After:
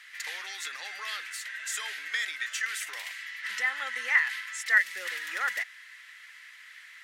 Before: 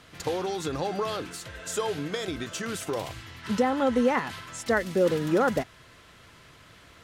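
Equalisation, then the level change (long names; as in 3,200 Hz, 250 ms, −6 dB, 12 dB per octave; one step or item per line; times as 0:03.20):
high-pass with resonance 1,900 Hz, resonance Q 6.1
high-shelf EQ 4,800 Hz +5 dB
−3.5 dB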